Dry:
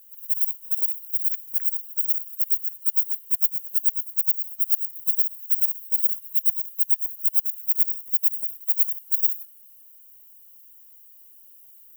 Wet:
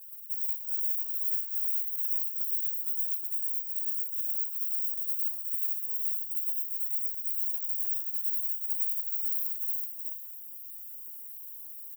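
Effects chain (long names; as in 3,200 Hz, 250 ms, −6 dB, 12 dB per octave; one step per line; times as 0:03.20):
delay that plays each chunk backwards 287 ms, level −11 dB
notch filter 6,400 Hz, Q 12
comb filter 5.9 ms, depth 65%
reversed playback
downward compressor 12 to 1, threshold −30 dBFS, peak gain reduction 18.5 dB
reversed playback
brickwall limiter −23 dBFS, peak gain reduction 7 dB
in parallel at −1.5 dB: output level in coarse steps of 20 dB
on the sum: high-shelf EQ 4,600 Hz +11 dB
single-tap delay 371 ms −3 dB
feedback delay network reverb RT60 2.2 s, low-frequency decay 1.35×, high-frequency decay 0.35×, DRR −0.5 dB
string-ensemble chorus
level −7 dB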